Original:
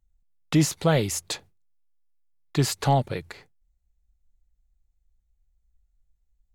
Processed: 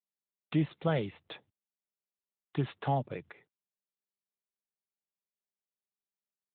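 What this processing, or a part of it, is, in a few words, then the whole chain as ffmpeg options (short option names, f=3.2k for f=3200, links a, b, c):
mobile call with aggressive noise cancelling: -af "highpass=110,afftdn=nr=31:nf=-50,volume=-8dB" -ar 8000 -c:a libopencore_amrnb -b:a 12200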